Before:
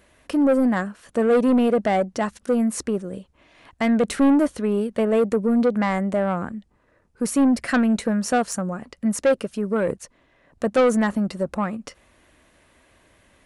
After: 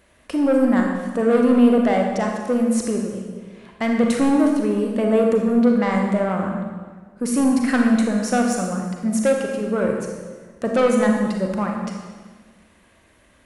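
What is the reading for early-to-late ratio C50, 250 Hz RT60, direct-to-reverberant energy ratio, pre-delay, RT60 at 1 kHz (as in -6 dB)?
2.5 dB, 1.6 s, 1.0 dB, 32 ms, 1.4 s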